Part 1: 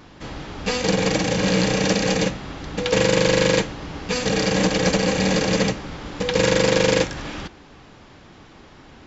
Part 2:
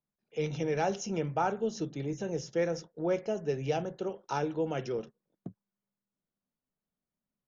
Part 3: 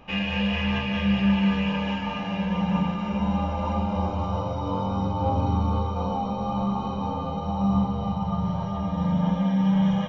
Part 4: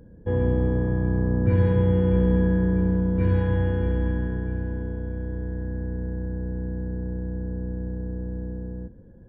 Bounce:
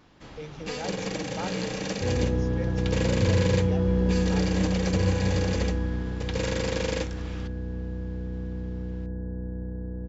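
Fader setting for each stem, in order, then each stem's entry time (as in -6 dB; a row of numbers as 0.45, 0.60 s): -11.5 dB, -7.5 dB, off, -3.5 dB; 0.00 s, 0.00 s, off, 1.75 s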